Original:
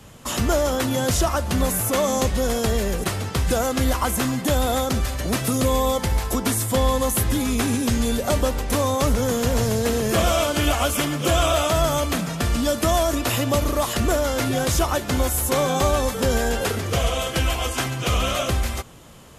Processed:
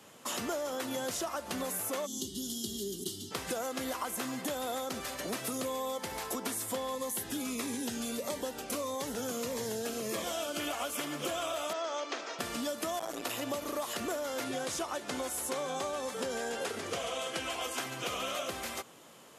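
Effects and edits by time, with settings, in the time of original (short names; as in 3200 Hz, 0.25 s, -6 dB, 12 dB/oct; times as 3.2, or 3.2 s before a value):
2.06–3.32 spectral gain 420–2800 Hz -27 dB
6.95–10.6 cascading phaser falling 1.6 Hz
11.73–12.39 elliptic band-pass 340–6000 Hz
12.99–13.43 core saturation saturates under 560 Hz
14.44–17.61 LPF 11000 Hz 24 dB/oct
whole clip: HPF 280 Hz 12 dB/oct; compressor, threshold -26 dBFS; gain -6.5 dB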